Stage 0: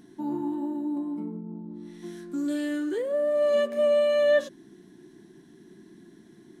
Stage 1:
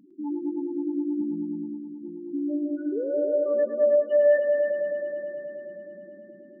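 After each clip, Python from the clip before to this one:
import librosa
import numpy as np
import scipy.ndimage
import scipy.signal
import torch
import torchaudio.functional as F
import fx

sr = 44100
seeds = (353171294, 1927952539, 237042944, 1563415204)

y = fx.spec_topn(x, sr, count=4)
y = fx.echo_heads(y, sr, ms=106, heads='all three', feedback_pct=70, wet_db=-10)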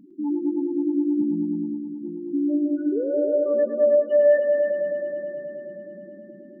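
y = fx.low_shelf(x, sr, hz=320.0, db=10.0)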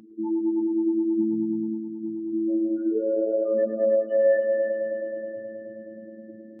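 y = fx.lowpass(x, sr, hz=1300.0, slope=6)
y = fx.robotise(y, sr, hz=110.0)
y = y * librosa.db_to_amplitude(3.5)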